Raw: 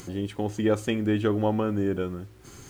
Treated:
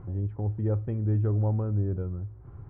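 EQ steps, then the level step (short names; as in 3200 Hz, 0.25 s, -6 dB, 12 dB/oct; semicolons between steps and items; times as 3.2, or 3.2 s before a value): resonant low shelf 160 Hz +11 dB, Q 1.5; dynamic EQ 970 Hz, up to -7 dB, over -41 dBFS, Q 0.74; ladder low-pass 1300 Hz, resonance 25%; 0.0 dB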